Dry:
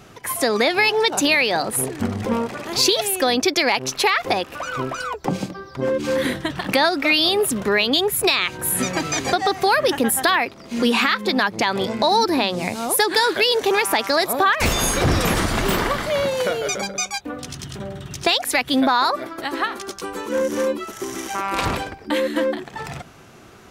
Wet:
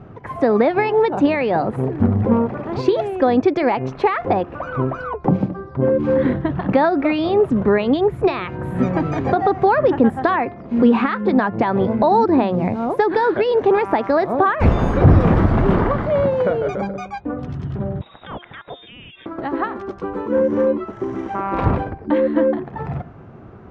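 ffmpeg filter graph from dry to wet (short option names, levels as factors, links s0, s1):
-filter_complex "[0:a]asettb=1/sr,asplit=3[s0][s1][s2];[s0]atrim=end=18.014[s3];[s1]atrim=start=18.01:end=19.26,asetpts=PTS-STARTPTS,afade=t=in:d=0.004:c=qsin,afade=t=out:st=1.246:d=0.004:c=qsin,lowpass=f=3300:t=q:w=0.5098,lowpass=f=3300:t=q:w=0.6013,lowpass=f=3300:t=q:w=0.9,lowpass=f=3300:t=q:w=2.563,afreqshift=-3900,acompressor=threshold=0.0562:ratio=12:attack=3.2:release=140:knee=1:detection=peak[s4];[s2]atrim=start=19.256[s5];[s3][s4]acrossfade=d=0.004:c1=hsin:c2=qsin[s6];[s6][s5]acrossfade=d=0.004:c1=qsin:c2=hsin,lowpass=1100,equalizer=f=100:t=o:w=2.4:g=7,bandreject=f=350.8:t=h:w=4,bandreject=f=701.6:t=h:w=4,bandreject=f=1052.4:t=h:w=4,bandreject=f=1403.2:t=h:w=4,bandreject=f=1754:t=h:w=4,bandreject=f=2104.8:t=h:w=4,bandreject=f=2455.6:t=h:w=4,bandreject=f=2806.4:t=h:w=4,volume=1.5"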